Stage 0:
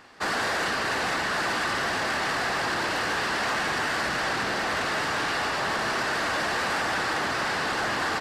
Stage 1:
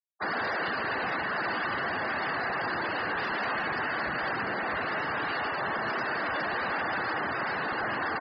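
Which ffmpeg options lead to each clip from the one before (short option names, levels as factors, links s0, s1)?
-af "afftfilt=real='re*gte(hypot(re,im),0.0447)':imag='im*gte(hypot(re,im),0.0447)':win_size=1024:overlap=0.75,volume=0.708"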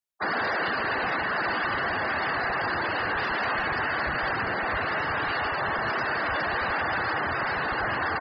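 -af "asubboost=boost=4.5:cutoff=91,volume=1.5"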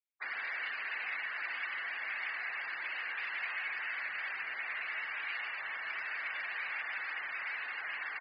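-af "bandpass=f=2300:t=q:w=5.1:csg=0"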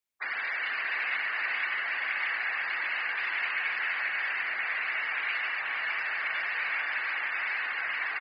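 -af "aecho=1:1:476:0.631,volume=2"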